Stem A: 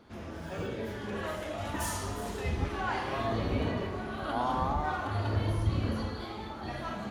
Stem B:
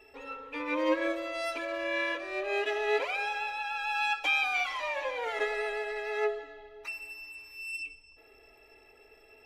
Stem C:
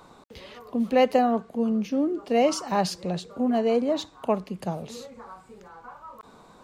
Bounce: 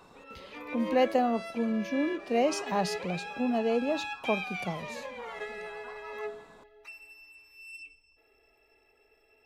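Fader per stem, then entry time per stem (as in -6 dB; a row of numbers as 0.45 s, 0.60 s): mute, -8.0 dB, -5.0 dB; mute, 0.00 s, 0.00 s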